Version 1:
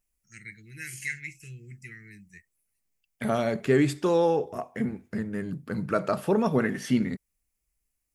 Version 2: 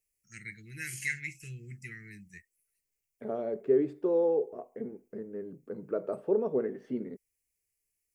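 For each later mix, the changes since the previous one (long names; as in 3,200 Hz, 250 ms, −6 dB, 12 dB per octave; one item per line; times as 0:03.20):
second voice: add resonant band-pass 430 Hz, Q 3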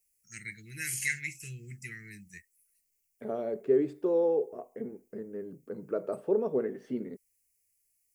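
master: add high-shelf EQ 4,400 Hz +9.5 dB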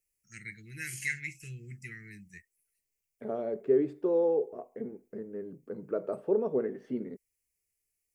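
master: add high-shelf EQ 4,400 Hz −9.5 dB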